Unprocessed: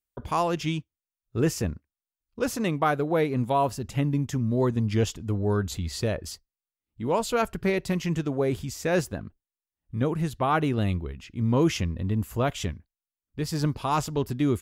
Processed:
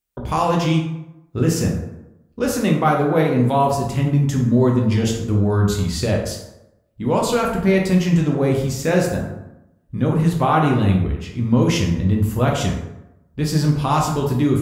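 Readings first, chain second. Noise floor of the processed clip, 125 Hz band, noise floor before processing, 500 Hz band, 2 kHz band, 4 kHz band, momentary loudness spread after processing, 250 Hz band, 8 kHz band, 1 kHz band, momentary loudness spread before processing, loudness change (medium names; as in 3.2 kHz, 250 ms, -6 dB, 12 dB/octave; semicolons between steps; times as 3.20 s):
-57 dBFS, +9.5 dB, under -85 dBFS, +7.0 dB, +6.0 dB, +7.0 dB, 11 LU, +9.0 dB, +7.5 dB, +7.0 dB, 10 LU, +8.0 dB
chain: peaking EQ 170 Hz +3 dB 0.77 oct; peak limiter -16 dBFS, peak gain reduction 5.5 dB; plate-style reverb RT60 0.9 s, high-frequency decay 0.55×, DRR -0.5 dB; trim +5 dB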